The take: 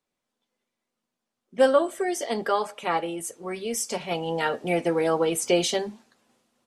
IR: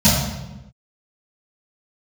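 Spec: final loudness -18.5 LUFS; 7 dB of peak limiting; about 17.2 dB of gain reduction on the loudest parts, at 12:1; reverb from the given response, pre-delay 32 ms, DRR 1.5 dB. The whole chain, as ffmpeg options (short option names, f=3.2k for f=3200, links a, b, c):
-filter_complex "[0:a]acompressor=threshold=-31dB:ratio=12,alimiter=level_in=2dB:limit=-24dB:level=0:latency=1,volume=-2dB,asplit=2[a][b];[1:a]atrim=start_sample=2205,adelay=32[c];[b][c]afir=irnorm=-1:irlink=0,volume=-23.5dB[d];[a][d]amix=inputs=2:normalize=0,volume=13dB"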